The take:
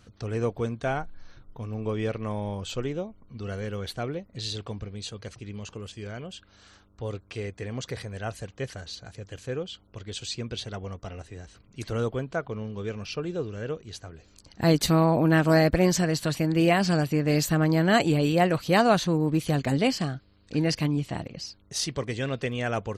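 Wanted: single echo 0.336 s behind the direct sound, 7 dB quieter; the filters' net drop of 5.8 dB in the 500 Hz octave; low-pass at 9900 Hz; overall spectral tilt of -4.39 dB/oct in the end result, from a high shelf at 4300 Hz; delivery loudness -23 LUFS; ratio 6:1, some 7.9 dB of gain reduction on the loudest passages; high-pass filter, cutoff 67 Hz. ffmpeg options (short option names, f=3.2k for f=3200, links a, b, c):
-af "highpass=67,lowpass=9.9k,equalizer=f=500:t=o:g=-8,highshelf=f=4.3k:g=8,acompressor=threshold=-26dB:ratio=6,aecho=1:1:336:0.447,volume=9dB"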